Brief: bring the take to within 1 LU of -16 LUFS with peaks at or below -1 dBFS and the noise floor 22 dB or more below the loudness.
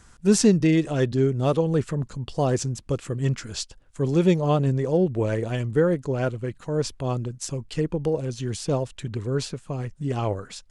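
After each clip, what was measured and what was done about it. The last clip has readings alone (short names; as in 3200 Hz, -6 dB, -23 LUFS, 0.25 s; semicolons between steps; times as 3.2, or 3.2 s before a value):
loudness -25.0 LUFS; peak -6.5 dBFS; loudness target -16.0 LUFS
-> gain +9 dB; limiter -1 dBFS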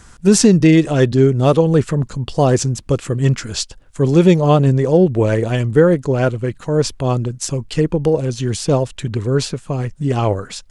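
loudness -16.0 LUFS; peak -1.0 dBFS; noise floor -43 dBFS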